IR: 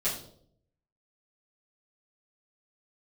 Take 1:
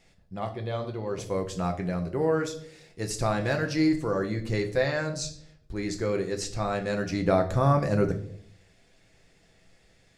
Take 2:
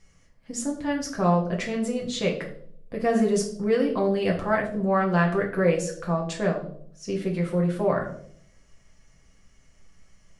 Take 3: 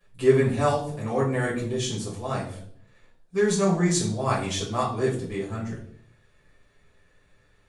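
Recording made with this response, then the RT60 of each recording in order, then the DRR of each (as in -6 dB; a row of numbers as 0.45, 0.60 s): 3; 0.65, 0.65, 0.65 s; 4.0, -1.5, -11.5 dB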